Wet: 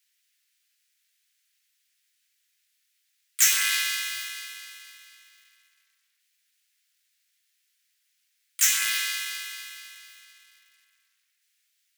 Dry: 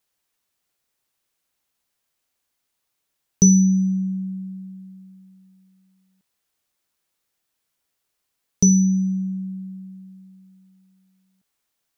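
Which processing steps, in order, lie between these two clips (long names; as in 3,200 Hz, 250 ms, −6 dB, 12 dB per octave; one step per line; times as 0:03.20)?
each half-wave held at its own peak
pitch-shifted copies added +3 semitones −1 dB, +7 semitones −11 dB
Butterworth high-pass 1,700 Hz 36 dB per octave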